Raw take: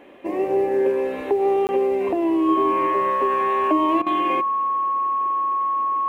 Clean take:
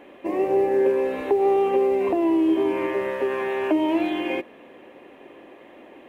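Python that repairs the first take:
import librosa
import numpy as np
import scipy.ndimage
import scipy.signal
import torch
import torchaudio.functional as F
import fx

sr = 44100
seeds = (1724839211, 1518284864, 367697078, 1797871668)

y = fx.notch(x, sr, hz=1100.0, q=30.0)
y = fx.fix_interpolate(y, sr, at_s=(1.67,), length_ms=19.0)
y = fx.fix_interpolate(y, sr, at_s=(4.02,), length_ms=43.0)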